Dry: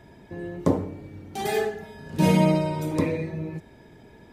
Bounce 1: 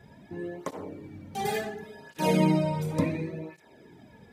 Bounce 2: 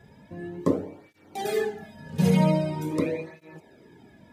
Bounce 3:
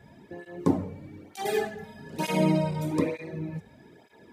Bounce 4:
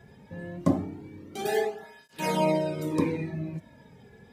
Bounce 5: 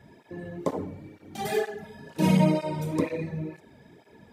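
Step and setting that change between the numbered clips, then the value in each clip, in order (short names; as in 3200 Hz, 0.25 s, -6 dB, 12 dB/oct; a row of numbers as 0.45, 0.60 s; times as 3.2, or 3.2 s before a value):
tape flanging out of phase, nulls at: 0.7, 0.44, 1.1, 0.24, 2.1 Hz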